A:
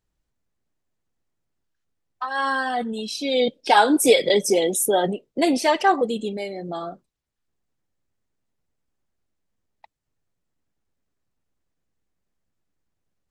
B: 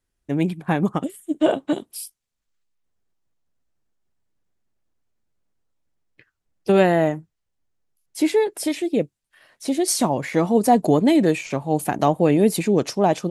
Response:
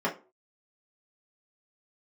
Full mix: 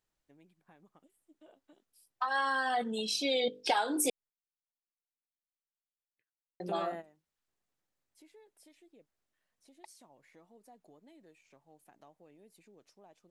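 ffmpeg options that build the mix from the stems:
-filter_complex "[0:a]bandreject=f=50:t=h:w=6,bandreject=f=100:t=h:w=6,bandreject=f=150:t=h:w=6,bandreject=f=200:t=h:w=6,bandreject=f=250:t=h:w=6,bandreject=f=300:t=h:w=6,bandreject=f=350:t=h:w=6,bandreject=f=400:t=h:w=6,bandreject=f=450:t=h:w=6,bandreject=f=500:t=h:w=6,volume=0.794,asplit=3[s0][s1][s2];[s0]atrim=end=4.1,asetpts=PTS-STARTPTS,afade=t=out:st=4.096:d=0.004:c=hsin[s3];[s1]atrim=start=4.1:end=6.6,asetpts=PTS-STARTPTS,volume=0[s4];[s2]atrim=start=6.6,asetpts=PTS-STARTPTS,afade=t=in:d=0.004:c=hsin[s5];[s3][s4][s5]concat=n=3:v=0:a=1,asplit=2[s6][s7];[1:a]acompressor=threshold=0.0631:ratio=2.5,volume=0.178[s8];[s7]apad=whole_len=586713[s9];[s8][s9]sidechaingate=range=0.141:threshold=0.00631:ratio=16:detection=peak[s10];[s6][s10]amix=inputs=2:normalize=0,lowshelf=f=250:g=-10.5,acompressor=threshold=0.0447:ratio=6"

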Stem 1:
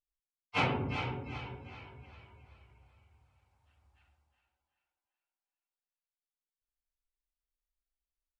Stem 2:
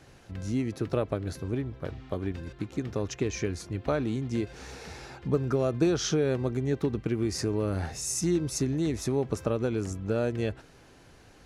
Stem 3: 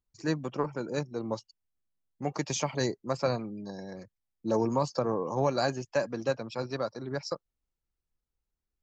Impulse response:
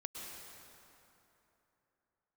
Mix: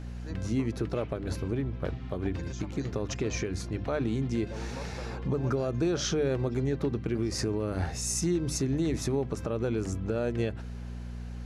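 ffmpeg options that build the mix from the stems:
-filter_complex "[0:a]highpass=1200,adelay=400,volume=0.106[s0];[1:a]highshelf=f=7900:g=-5.5,aeval=exprs='val(0)+0.0112*(sin(2*PI*60*n/s)+sin(2*PI*2*60*n/s)/2+sin(2*PI*3*60*n/s)/3+sin(2*PI*4*60*n/s)/4+sin(2*PI*5*60*n/s)/5)':c=same,volume=1.33[s1];[2:a]volume=0.168[s2];[s1][s2]amix=inputs=2:normalize=0,bandreject=f=50:t=h:w=6,bandreject=f=100:t=h:w=6,bandreject=f=150:t=h:w=6,bandreject=f=200:t=h:w=6,bandreject=f=250:t=h:w=6,bandreject=f=300:t=h:w=6,alimiter=limit=0.1:level=0:latency=1:release=134,volume=1[s3];[s0][s3]amix=inputs=2:normalize=0"

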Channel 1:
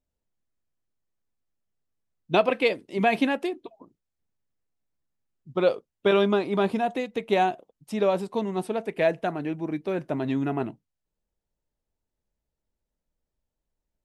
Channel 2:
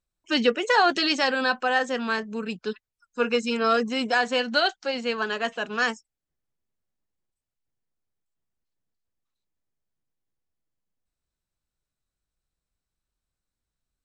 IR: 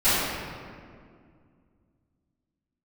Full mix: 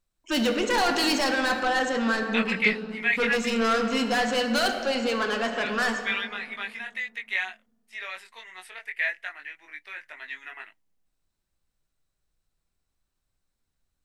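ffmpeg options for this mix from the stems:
-filter_complex "[0:a]agate=range=0.251:threshold=0.00708:ratio=16:detection=peak,highpass=f=1900:t=q:w=5.7,flanger=delay=19:depth=2.8:speed=0.18,volume=0.891[s0];[1:a]asoftclip=type=tanh:threshold=0.0531,acontrast=75,volume=0.668,asplit=2[s1][s2];[s2]volume=0.075[s3];[2:a]atrim=start_sample=2205[s4];[s3][s4]afir=irnorm=-1:irlink=0[s5];[s0][s1][s5]amix=inputs=3:normalize=0"

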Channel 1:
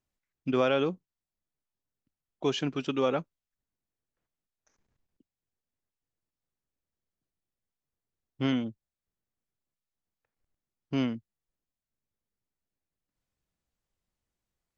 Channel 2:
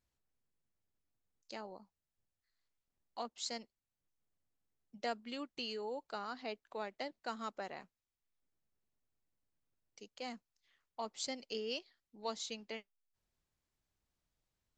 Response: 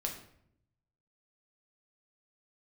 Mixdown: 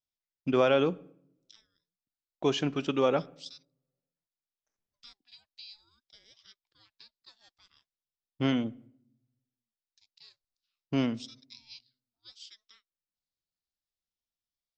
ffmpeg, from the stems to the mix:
-filter_complex "[0:a]agate=range=0.141:threshold=0.00158:ratio=16:detection=peak,equalizer=f=630:w=1.5:g=2,volume=0.944,asplit=2[s0][s1];[s1]volume=0.168[s2];[1:a]bandpass=f=4400:t=q:w=4.2:csg=0,aeval=exprs='val(0)*sin(2*PI*610*n/s+610*0.45/0.63*sin(2*PI*0.63*n/s))':c=same,volume=1.33[s3];[2:a]atrim=start_sample=2205[s4];[s2][s4]afir=irnorm=-1:irlink=0[s5];[s0][s3][s5]amix=inputs=3:normalize=0"

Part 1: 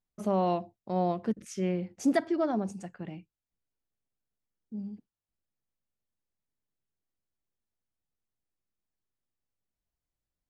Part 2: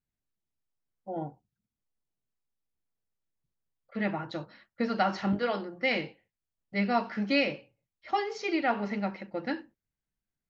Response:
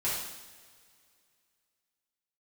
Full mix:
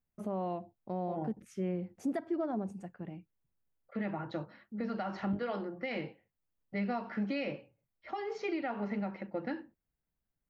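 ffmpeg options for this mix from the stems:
-filter_complex "[0:a]volume=0.708[s0];[1:a]alimiter=limit=0.126:level=0:latency=1:release=290,acrossover=split=140|3000[s1][s2][s3];[s2]acompressor=threshold=0.0355:ratio=6[s4];[s1][s4][s3]amix=inputs=3:normalize=0,volume=1.12[s5];[s0][s5]amix=inputs=2:normalize=0,equalizer=f=5700:w=0.54:g=-12,alimiter=level_in=1.26:limit=0.0631:level=0:latency=1:release=192,volume=0.794"

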